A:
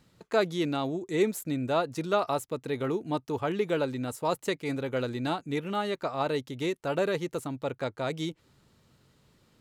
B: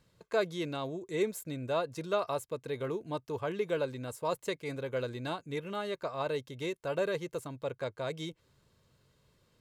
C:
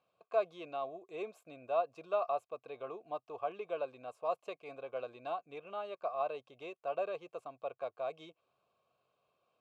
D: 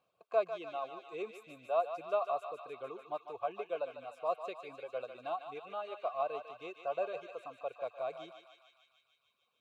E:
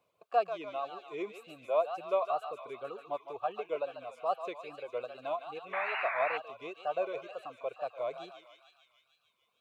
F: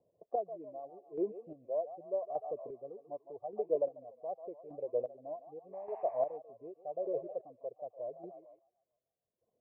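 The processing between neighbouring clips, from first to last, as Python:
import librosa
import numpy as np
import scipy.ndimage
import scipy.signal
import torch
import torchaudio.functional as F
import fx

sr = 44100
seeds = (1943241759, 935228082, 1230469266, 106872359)

y1 = x + 0.41 * np.pad(x, (int(1.9 * sr / 1000.0), 0))[:len(x)]
y1 = y1 * librosa.db_to_amplitude(-5.5)
y2 = fx.vowel_filter(y1, sr, vowel='a')
y2 = y2 * librosa.db_to_amplitude(6.5)
y3 = fx.dereverb_blind(y2, sr, rt60_s=2.0)
y3 = fx.echo_thinned(y3, sr, ms=149, feedback_pct=78, hz=980.0, wet_db=-6)
y3 = y3 * librosa.db_to_amplitude(1.0)
y4 = fx.spec_paint(y3, sr, seeds[0], shape='noise', start_s=5.73, length_s=0.65, low_hz=690.0, high_hz=2700.0, level_db=-38.0)
y4 = fx.wow_flutter(y4, sr, seeds[1], rate_hz=2.1, depth_cents=120.0)
y4 = y4 * librosa.db_to_amplitude(2.5)
y5 = scipy.signal.sosfilt(scipy.signal.cheby2(4, 40, 1300.0, 'lowpass', fs=sr, output='sos'), y4)
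y5 = fx.chopper(y5, sr, hz=0.85, depth_pct=60, duty_pct=30)
y5 = y5 * librosa.db_to_amplitude(4.5)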